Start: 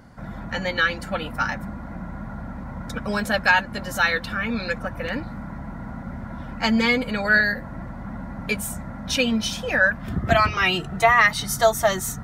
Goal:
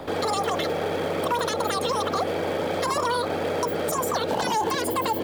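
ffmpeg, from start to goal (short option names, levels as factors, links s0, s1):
-filter_complex "[0:a]afftfilt=real='re*lt(hypot(re,im),0.501)':imag='im*lt(hypot(re,im),0.501)':win_size=1024:overlap=0.75,equalizer=f=380:w=1.9:g=15,acrossover=split=380|5800[s0][s1][s2];[s0]acontrast=66[s3];[s3][s1][s2]amix=inputs=3:normalize=0,alimiter=limit=0.224:level=0:latency=1,asplit=2[s4][s5];[s5]acrusher=bits=2:mode=log:mix=0:aa=0.000001,volume=0.355[s6];[s4][s6]amix=inputs=2:normalize=0,acrossover=split=93|400[s7][s8][s9];[s7]acompressor=threshold=0.00708:ratio=4[s10];[s8]acompressor=threshold=0.0562:ratio=4[s11];[s9]acompressor=threshold=0.0355:ratio=4[s12];[s10][s11][s12]amix=inputs=3:normalize=0,asetrate=103194,aresample=44100"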